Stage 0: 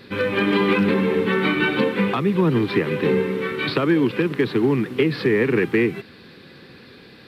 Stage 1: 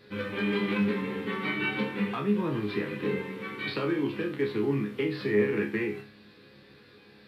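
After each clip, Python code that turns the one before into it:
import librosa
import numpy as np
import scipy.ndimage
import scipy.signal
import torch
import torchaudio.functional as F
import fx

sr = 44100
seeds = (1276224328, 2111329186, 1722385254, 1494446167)

y = fx.resonator_bank(x, sr, root=37, chord='fifth', decay_s=0.37)
y = y * 10.0 ** (1.5 / 20.0)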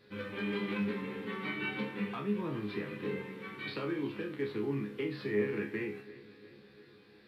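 y = fx.echo_filtered(x, sr, ms=351, feedback_pct=60, hz=4300.0, wet_db=-18)
y = y * 10.0 ** (-7.0 / 20.0)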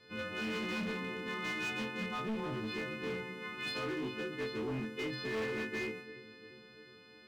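y = fx.freq_snap(x, sr, grid_st=3)
y = fx.air_absorb(y, sr, metres=63.0)
y = np.clip(10.0 ** (33.5 / 20.0) * y, -1.0, 1.0) / 10.0 ** (33.5 / 20.0)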